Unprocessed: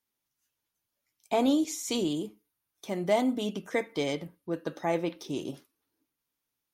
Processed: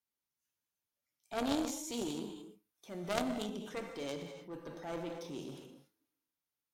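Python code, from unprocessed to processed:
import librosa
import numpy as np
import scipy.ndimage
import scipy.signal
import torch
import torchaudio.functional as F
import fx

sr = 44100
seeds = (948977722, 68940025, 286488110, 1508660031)

y = fx.clip_asym(x, sr, top_db=-28.5, bottom_db=-16.5)
y = fx.rev_gated(y, sr, seeds[0], gate_ms=310, shape='flat', drr_db=5.5)
y = fx.transient(y, sr, attack_db=-4, sustain_db=4)
y = fx.cheby_harmonics(y, sr, harmonics=(3, 5), levels_db=(-8, -22), full_scale_db=-17.0)
y = fx.dynamic_eq(y, sr, hz=1900.0, q=0.99, threshold_db=-58.0, ratio=4.0, max_db=-3)
y = y * librosa.db_to_amplitude(4.5)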